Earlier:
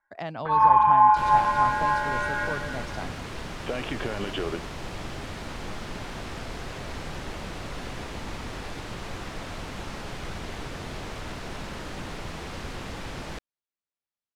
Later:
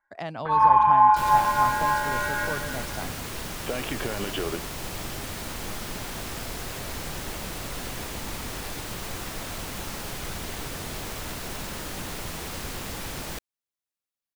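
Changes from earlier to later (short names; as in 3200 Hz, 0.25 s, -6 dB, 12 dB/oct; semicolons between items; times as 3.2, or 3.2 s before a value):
second sound: add high shelf 5100 Hz +7.5 dB; master: remove air absorption 54 m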